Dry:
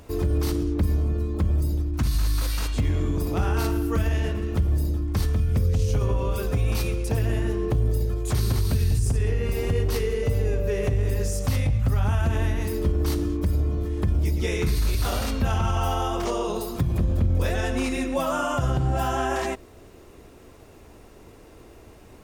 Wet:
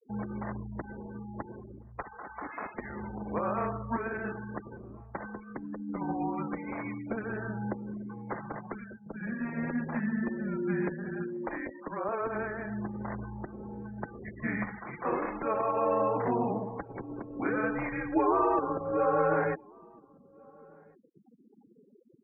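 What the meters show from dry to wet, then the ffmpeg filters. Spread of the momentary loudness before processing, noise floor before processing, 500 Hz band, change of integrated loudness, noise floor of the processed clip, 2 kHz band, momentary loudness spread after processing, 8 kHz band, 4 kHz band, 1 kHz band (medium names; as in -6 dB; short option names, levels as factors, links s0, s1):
3 LU, -48 dBFS, -4.0 dB, -8.5 dB, -60 dBFS, -2.5 dB, 15 LU, under -40 dB, under -40 dB, -1.0 dB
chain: -filter_complex "[0:a]highpass=f=490:t=q:w=0.5412,highpass=f=490:t=q:w=1.307,lowpass=f=2200:t=q:w=0.5176,lowpass=f=2200:t=q:w=0.7071,lowpass=f=2200:t=q:w=1.932,afreqshift=-230,afftfilt=real='re*gte(hypot(re,im),0.01)':imag='im*gte(hypot(re,im),0.01)':win_size=1024:overlap=0.75,asplit=2[s0][s1];[s1]adelay=1399,volume=0.0447,highshelf=f=4000:g=-31.5[s2];[s0][s2]amix=inputs=2:normalize=0,volume=1.19"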